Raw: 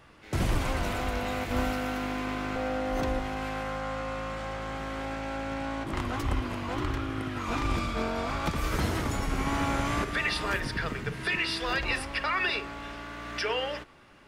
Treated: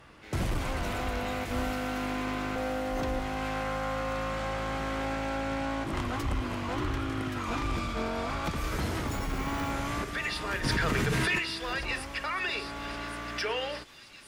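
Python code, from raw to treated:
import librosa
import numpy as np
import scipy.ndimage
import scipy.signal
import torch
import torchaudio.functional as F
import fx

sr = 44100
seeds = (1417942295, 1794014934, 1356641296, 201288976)

p1 = fx.rider(x, sr, range_db=4, speed_s=0.5)
p2 = p1 + fx.echo_wet_highpass(p1, sr, ms=1125, feedback_pct=59, hz=3900.0, wet_db=-7, dry=0)
p3 = fx.resample_bad(p2, sr, factor=2, down='none', up='hold', at=(9.07, 9.71))
p4 = fx.cheby_harmonics(p3, sr, harmonics=(5,), levels_db=(-19,), full_scale_db=-14.0)
p5 = fx.env_flatten(p4, sr, amount_pct=100, at=(10.63, 11.38), fade=0.02)
y = F.gain(torch.from_numpy(p5), -4.5).numpy()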